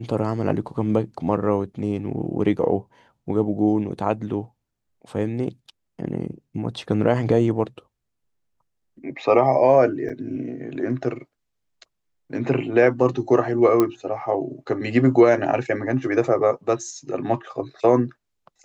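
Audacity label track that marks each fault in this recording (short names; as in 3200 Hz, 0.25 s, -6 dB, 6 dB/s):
10.090000	10.100000	gap 6.4 ms
13.800000	13.800000	pop -7 dBFS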